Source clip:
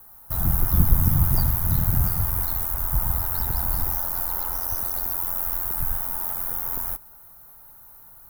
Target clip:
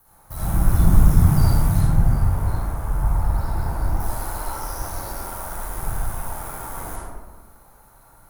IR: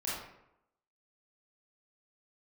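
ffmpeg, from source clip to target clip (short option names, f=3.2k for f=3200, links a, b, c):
-filter_complex "[0:a]asettb=1/sr,asplit=3[a][b][c];[a]atrim=end=1.814[d];[b]atrim=start=1.81:end=4,asetpts=PTS-STARTPTS,afade=t=in:d=0.004:c=qsin,afade=t=out:st=2.186:d=0.004:c=qsin,highshelf=f=2.3k:g=-10.5[e];[c]atrim=start=3.996[f];[d][e]acrossfade=d=0.004:c1=hsin:c2=qsin[g];[g][f]acrossfade=d=0.004:c1=qsin:c2=hsin[h];[1:a]atrim=start_sample=2205,asetrate=22050,aresample=44100[i];[h][i]afir=irnorm=-1:irlink=0,volume=-4dB"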